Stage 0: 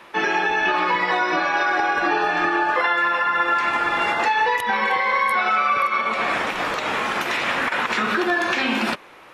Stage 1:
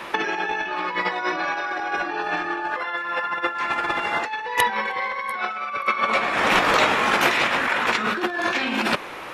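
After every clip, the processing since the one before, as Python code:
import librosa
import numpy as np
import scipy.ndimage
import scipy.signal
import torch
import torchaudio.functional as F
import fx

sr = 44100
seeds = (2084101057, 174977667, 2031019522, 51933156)

y = fx.over_compress(x, sr, threshold_db=-26.0, ratio=-0.5)
y = y * librosa.db_to_amplitude(4.0)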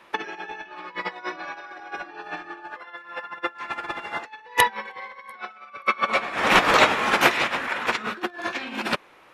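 y = fx.upward_expand(x, sr, threshold_db=-30.0, expansion=2.5)
y = y * librosa.db_to_amplitude(4.0)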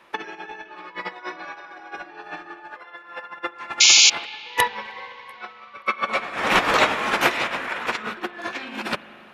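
y = fx.spec_paint(x, sr, seeds[0], shape='noise', start_s=3.8, length_s=0.3, low_hz=2100.0, high_hz=7200.0, level_db=-11.0)
y = fx.rev_spring(y, sr, rt60_s=3.7, pass_ms=(37, 43), chirp_ms=55, drr_db=14.5)
y = y * librosa.db_to_amplitude(-1.5)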